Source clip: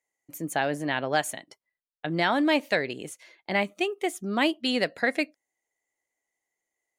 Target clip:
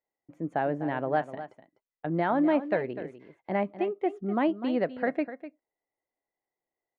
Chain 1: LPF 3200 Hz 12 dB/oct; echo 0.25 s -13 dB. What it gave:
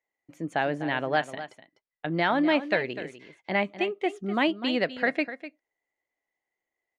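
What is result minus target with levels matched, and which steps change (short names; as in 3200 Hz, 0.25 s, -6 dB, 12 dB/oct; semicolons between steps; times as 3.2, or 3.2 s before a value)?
4000 Hz band +13.5 dB
change: LPF 1100 Hz 12 dB/oct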